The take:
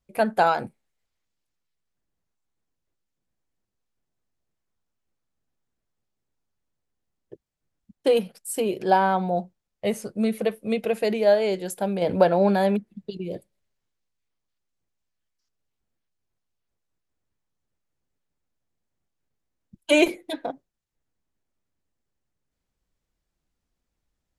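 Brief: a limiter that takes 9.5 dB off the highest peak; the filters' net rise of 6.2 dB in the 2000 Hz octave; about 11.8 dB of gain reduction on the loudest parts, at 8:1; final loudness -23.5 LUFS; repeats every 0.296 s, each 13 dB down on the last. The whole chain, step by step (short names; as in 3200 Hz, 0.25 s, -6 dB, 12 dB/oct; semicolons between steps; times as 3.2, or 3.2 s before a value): bell 2000 Hz +8.5 dB; compressor 8:1, threshold -24 dBFS; limiter -22 dBFS; feedback echo 0.296 s, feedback 22%, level -13 dB; gain +9 dB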